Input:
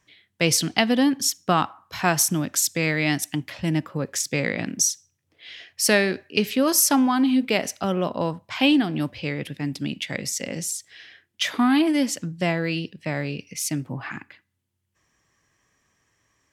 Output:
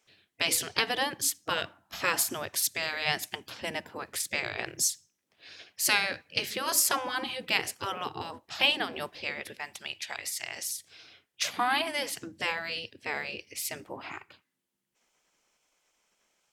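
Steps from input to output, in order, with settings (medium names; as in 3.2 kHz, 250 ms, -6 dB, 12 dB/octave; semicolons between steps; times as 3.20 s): spectral gate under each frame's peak -10 dB weak; 9.58–10.70 s: resonant low shelf 590 Hz -10.5 dB, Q 1.5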